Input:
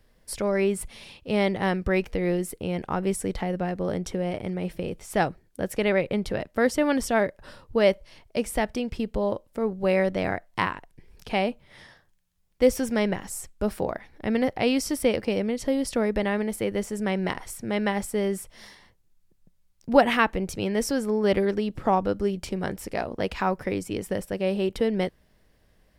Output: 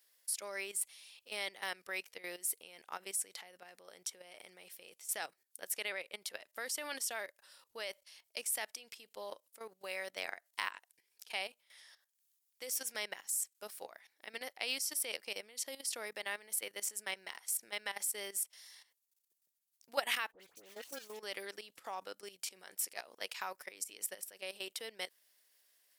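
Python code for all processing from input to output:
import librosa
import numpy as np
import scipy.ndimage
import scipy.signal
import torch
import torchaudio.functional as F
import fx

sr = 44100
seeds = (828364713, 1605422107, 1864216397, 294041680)

y = fx.chain(x, sr, fx.median_filter(points=25),
    fx.dispersion(late='highs', ms=72.0, hz=1900.0), at=(20.32, 21.2))
y = fx.bass_treble(y, sr, bass_db=-12, treble_db=0)
y = fx.level_steps(y, sr, step_db=14)
y = np.diff(y, prepend=0.0)
y = y * librosa.db_to_amplitude(5.5)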